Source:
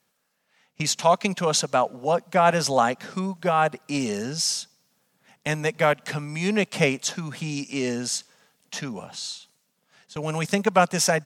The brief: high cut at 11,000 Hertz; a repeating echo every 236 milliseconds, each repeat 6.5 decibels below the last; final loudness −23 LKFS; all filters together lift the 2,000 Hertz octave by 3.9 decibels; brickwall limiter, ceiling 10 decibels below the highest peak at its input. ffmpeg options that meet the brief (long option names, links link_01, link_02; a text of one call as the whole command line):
ffmpeg -i in.wav -af "lowpass=11000,equalizer=frequency=2000:width_type=o:gain=5,alimiter=limit=-12.5dB:level=0:latency=1,aecho=1:1:236|472|708|944|1180|1416:0.473|0.222|0.105|0.0491|0.0231|0.0109,volume=2.5dB" out.wav